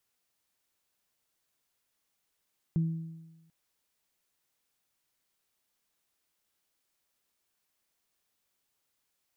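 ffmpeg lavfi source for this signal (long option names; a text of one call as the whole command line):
ffmpeg -f lavfi -i "aevalsrc='0.075*pow(10,-3*t/1.12)*sin(2*PI*163*t)+0.0106*pow(10,-3*t/0.99)*sin(2*PI*326*t)':duration=0.74:sample_rate=44100" out.wav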